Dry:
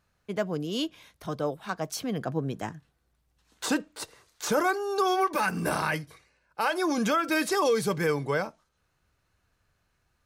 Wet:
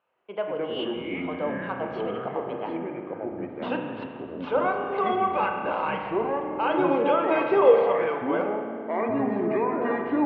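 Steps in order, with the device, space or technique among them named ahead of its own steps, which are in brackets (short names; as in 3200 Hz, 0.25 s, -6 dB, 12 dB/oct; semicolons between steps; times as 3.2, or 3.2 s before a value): 6.69–7.72 bell 410 Hz +10.5 dB 0.72 oct; phone earpiece (speaker cabinet 470–3100 Hz, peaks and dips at 510 Hz +7 dB, 930 Hz +5 dB, 1800 Hz -8 dB, 2900 Hz +8 dB); spring tank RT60 1.9 s, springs 30 ms, chirp 70 ms, DRR 3 dB; echoes that change speed 90 ms, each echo -5 st, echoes 3; air absorption 280 m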